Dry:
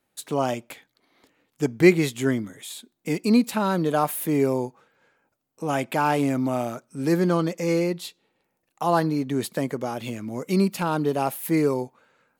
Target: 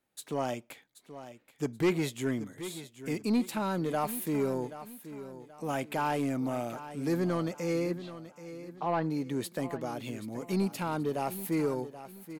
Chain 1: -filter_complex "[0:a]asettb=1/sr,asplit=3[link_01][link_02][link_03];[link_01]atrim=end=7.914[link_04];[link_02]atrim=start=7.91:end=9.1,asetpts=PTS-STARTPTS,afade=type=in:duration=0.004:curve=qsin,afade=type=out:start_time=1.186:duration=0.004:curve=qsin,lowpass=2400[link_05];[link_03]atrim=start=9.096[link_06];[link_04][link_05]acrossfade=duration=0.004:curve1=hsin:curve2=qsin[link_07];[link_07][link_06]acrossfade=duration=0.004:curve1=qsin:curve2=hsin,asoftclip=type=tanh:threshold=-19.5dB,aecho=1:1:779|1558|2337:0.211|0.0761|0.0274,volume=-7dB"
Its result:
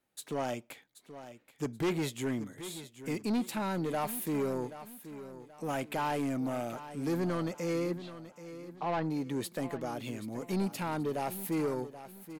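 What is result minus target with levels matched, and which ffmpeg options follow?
soft clipping: distortion +5 dB
-filter_complex "[0:a]asettb=1/sr,asplit=3[link_01][link_02][link_03];[link_01]atrim=end=7.914[link_04];[link_02]atrim=start=7.91:end=9.1,asetpts=PTS-STARTPTS,afade=type=in:duration=0.004:curve=qsin,afade=type=out:start_time=1.186:duration=0.004:curve=qsin,lowpass=2400[link_05];[link_03]atrim=start=9.096[link_06];[link_04][link_05]acrossfade=duration=0.004:curve1=hsin:curve2=qsin[link_07];[link_07][link_06]acrossfade=duration=0.004:curve1=qsin:curve2=hsin,asoftclip=type=tanh:threshold=-13.5dB,aecho=1:1:779|1558|2337:0.211|0.0761|0.0274,volume=-7dB"

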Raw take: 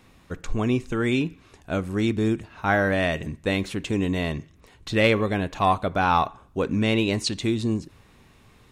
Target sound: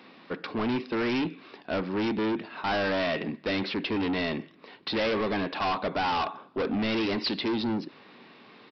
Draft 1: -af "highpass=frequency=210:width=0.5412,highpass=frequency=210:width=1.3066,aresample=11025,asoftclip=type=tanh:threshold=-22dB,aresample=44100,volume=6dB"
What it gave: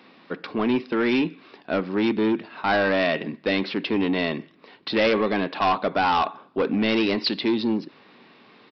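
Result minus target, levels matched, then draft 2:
soft clipping: distortion −5 dB
-af "highpass=frequency=210:width=0.5412,highpass=frequency=210:width=1.3066,aresample=11025,asoftclip=type=tanh:threshold=-31dB,aresample=44100,volume=6dB"

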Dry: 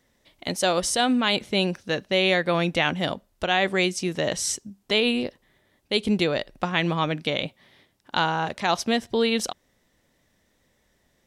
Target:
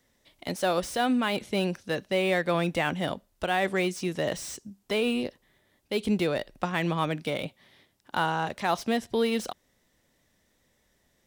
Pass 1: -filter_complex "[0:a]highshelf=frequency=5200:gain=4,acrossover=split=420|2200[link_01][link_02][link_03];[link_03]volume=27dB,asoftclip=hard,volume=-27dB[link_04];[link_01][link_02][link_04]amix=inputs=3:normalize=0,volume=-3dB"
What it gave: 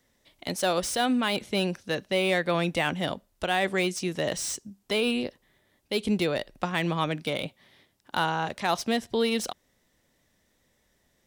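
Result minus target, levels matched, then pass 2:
gain into a clipping stage and back: distortion −4 dB
-filter_complex "[0:a]highshelf=frequency=5200:gain=4,acrossover=split=420|2200[link_01][link_02][link_03];[link_03]volume=35dB,asoftclip=hard,volume=-35dB[link_04];[link_01][link_02][link_04]amix=inputs=3:normalize=0,volume=-3dB"

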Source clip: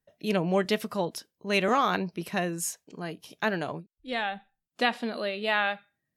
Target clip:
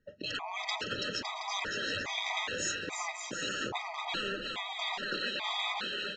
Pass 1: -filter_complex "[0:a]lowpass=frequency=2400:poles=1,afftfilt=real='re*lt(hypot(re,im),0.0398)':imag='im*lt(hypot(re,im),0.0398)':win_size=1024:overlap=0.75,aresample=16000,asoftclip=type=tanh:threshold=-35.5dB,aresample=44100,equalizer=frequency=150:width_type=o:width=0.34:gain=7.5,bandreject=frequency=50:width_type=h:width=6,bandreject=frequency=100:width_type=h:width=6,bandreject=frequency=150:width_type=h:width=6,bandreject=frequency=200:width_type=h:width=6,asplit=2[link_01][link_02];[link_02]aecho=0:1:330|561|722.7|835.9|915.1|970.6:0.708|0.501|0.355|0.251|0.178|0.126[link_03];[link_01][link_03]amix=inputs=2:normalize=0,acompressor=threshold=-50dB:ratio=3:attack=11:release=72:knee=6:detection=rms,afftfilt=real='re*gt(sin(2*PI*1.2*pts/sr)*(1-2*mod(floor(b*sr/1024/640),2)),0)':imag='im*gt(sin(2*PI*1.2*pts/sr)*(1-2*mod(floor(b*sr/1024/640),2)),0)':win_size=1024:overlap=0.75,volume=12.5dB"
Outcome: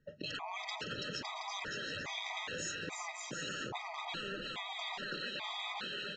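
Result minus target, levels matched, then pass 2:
downward compressor: peak gain reduction +8 dB; 125 Hz band +4.5 dB
-filter_complex "[0:a]lowpass=frequency=2400:poles=1,afftfilt=real='re*lt(hypot(re,im),0.0398)':imag='im*lt(hypot(re,im),0.0398)':win_size=1024:overlap=0.75,aresample=16000,asoftclip=type=tanh:threshold=-35.5dB,aresample=44100,equalizer=frequency=150:width_type=o:width=0.34:gain=-3.5,bandreject=frequency=50:width_type=h:width=6,bandreject=frequency=100:width_type=h:width=6,bandreject=frequency=150:width_type=h:width=6,bandreject=frequency=200:width_type=h:width=6,asplit=2[link_01][link_02];[link_02]aecho=0:1:330|561|722.7|835.9|915.1|970.6:0.708|0.501|0.355|0.251|0.178|0.126[link_03];[link_01][link_03]amix=inputs=2:normalize=0,afftfilt=real='re*gt(sin(2*PI*1.2*pts/sr)*(1-2*mod(floor(b*sr/1024/640),2)),0)':imag='im*gt(sin(2*PI*1.2*pts/sr)*(1-2*mod(floor(b*sr/1024/640),2)),0)':win_size=1024:overlap=0.75,volume=12.5dB"

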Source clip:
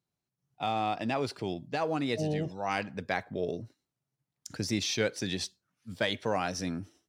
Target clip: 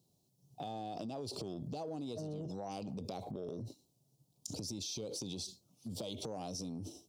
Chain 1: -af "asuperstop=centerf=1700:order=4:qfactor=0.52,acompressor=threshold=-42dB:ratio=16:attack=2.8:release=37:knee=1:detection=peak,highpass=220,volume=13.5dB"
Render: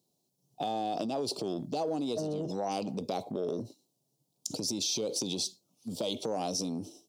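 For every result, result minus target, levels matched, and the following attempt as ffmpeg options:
downward compressor: peak gain reduction −10.5 dB; 125 Hz band −7.0 dB
-af "asuperstop=centerf=1700:order=4:qfactor=0.52,acompressor=threshold=-53dB:ratio=16:attack=2.8:release=37:knee=1:detection=peak,highpass=220,volume=13.5dB"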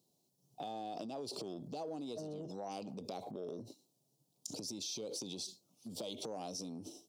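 125 Hz band −6.5 dB
-af "asuperstop=centerf=1700:order=4:qfactor=0.52,acompressor=threshold=-53dB:ratio=16:attack=2.8:release=37:knee=1:detection=peak,highpass=67,volume=13.5dB"

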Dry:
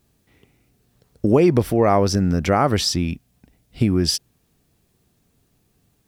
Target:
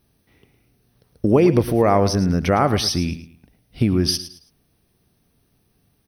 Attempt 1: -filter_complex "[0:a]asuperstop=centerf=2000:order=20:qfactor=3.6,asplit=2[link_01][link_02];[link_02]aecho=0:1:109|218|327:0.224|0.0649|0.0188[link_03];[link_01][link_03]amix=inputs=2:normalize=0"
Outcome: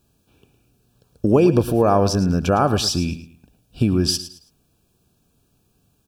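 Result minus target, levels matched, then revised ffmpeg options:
2,000 Hz band −2.5 dB
-filter_complex "[0:a]asuperstop=centerf=7300:order=20:qfactor=3.6,asplit=2[link_01][link_02];[link_02]aecho=0:1:109|218|327:0.224|0.0649|0.0188[link_03];[link_01][link_03]amix=inputs=2:normalize=0"

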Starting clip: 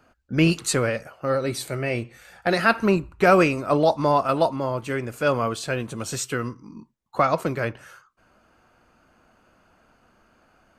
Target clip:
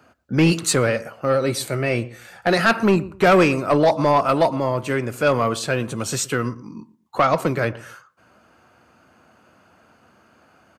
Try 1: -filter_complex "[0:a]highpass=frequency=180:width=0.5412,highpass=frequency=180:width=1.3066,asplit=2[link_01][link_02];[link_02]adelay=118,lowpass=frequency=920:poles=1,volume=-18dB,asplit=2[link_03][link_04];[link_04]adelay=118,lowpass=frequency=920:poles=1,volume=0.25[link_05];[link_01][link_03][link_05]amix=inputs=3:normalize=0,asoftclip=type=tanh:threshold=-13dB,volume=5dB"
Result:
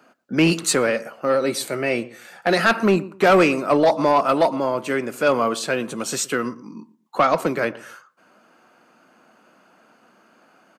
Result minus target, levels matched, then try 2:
125 Hz band −6.5 dB
-filter_complex "[0:a]highpass=frequency=75:width=0.5412,highpass=frequency=75:width=1.3066,asplit=2[link_01][link_02];[link_02]adelay=118,lowpass=frequency=920:poles=1,volume=-18dB,asplit=2[link_03][link_04];[link_04]adelay=118,lowpass=frequency=920:poles=1,volume=0.25[link_05];[link_01][link_03][link_05]amix=inputs=3:normalize=0,asoftclip=type=tanh:threshold=-13dB,volume=5dB"

